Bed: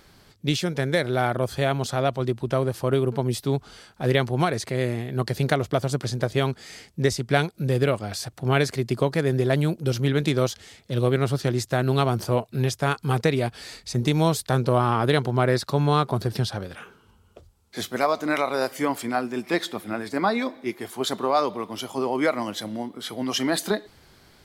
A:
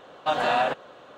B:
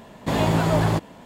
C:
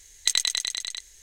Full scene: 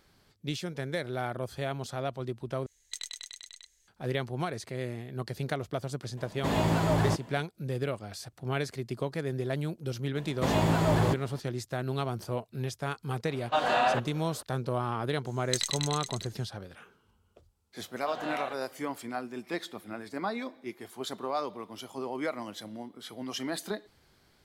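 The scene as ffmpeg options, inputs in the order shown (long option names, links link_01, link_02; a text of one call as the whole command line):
ffmpeg -i bed.wav -i cue0.wav -i cue1.wav -i cue2.wav -filter_complex "[3:a]asplit=2[link_01][link_02];[2:a]asplit=2[link_03][link_04];[1:a]asplit=2[link_05][link_06];[0:a]volume=-10.5dB,asplit=2[link_07][link_08];[link_07]atrim=end=2.664[link_09];[link_01]atrim=end=1.22,asetpts=PTS-STARTPTS,volume=-16.5dB[link_10];[link_08]atrim=start=3.876[link_11];[link_03]atrim=end=1.25,asetpts=PTS-STARTPTS,volume=-6dB,afade=type=in:duration=0.004:curve=hsin,afade=type=out:start_time=1.246:duration=0.004:curve=hsin,adelay=6170[link_12];[link_04]atrim=end=1.25,asetpts=PTS-STARTPTS,volume=-5dB,afade=type=in:duration=0.004:curve=hsin,afade=type=out:start_time=1.246:duration=0.004:curve=hsin,adelay=10150[link_13];[link_05]atrim=end=1.17,asetpts=PTS-STARTPTS,volume=-2.5dB,afade=type=in:duration=0.004:curve=hsin,afade=type=out:start_time=1.166:duration=0.004:curve=hsin,adelay=13260[link_14];[link_02]atrim=end=1.22,asetpts=PTS-STARTPTS,volume=-8dB,afade=type=in:duration=0.004:curve=hsin,afade=type=out:start_time=1.216:duration=0.004:curve=hsin,adelay=15260[link_15];[link_06]atrim=end=1.17,asetpts=PTS-STARTPTS,volume=-13.5dB,afade=type=in:duration=0.004:curve=hsin,afade=type=out:start_time=1.166:duration=0.004:curve=hsin,adelay=784980S[link_16];[link_09][link_10]acrossfade=duration=0.004:curve1=hsin:curve2=hsin[link_17];[link_17][link_11]acrossfade=duration=0.004:curve1=hsin:curve2=hsin[link_18];[link_18][link_12][link_13][link_14][link_15][link_16]amix=inputs=6:normalize=0" out.wav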